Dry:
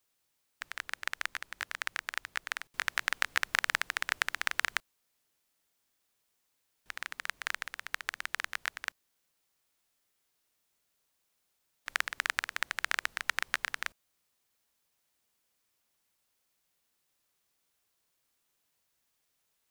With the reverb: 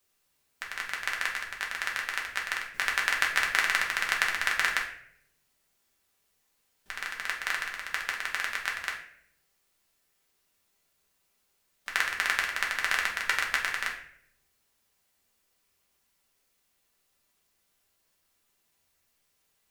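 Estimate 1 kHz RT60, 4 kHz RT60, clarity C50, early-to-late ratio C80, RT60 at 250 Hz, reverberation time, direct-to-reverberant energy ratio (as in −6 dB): 0.60 s, 0.45 s, 7.0 dB, 10.5 dB, 0.85 s, 0.65 s, −2.0 dB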